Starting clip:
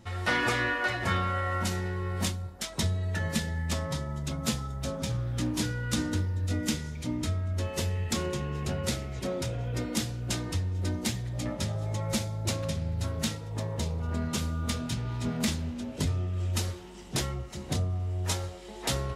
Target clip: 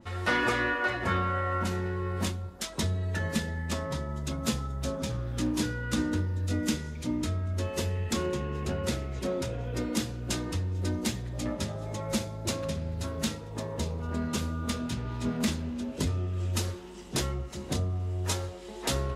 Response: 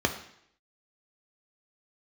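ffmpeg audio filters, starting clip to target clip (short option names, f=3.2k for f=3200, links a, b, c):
-filter_complex "[0:a]asplit=2[a][b];[1:a]atrim=start_sample=2205[c];[b][c]afir=irnorm=-1:irlink=0,volume=-24.5dB[d];[a][d]amix=inputs=2:normalize=0,adynamicequalizer=threshold=0.00398:dfrequency=3200:dqfactor=0.7:tfrequency=3200:tqfactor=0.7:attack=5:release=100:ratio=0.375:range=4:mode=cutabove:tftype=highshelf"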